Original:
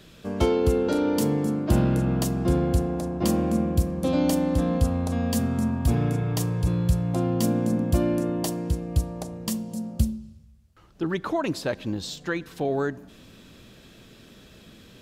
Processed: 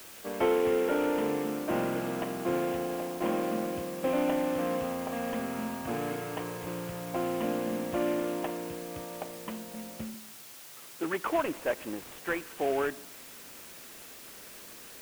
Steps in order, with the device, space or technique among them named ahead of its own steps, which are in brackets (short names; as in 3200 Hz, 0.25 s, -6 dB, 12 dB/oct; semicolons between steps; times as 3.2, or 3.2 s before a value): army field radio (BPF 400–3000 Hz; CVSD 16 kbps; white noise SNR 16 dB); 10.14–11.26 HPF 98 Hz 24 dB/oct